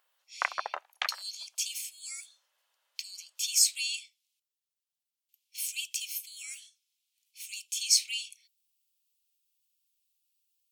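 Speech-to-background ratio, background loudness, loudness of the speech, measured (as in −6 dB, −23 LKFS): 5.0 dB, −35.5 LKFS, −30.5 LKFS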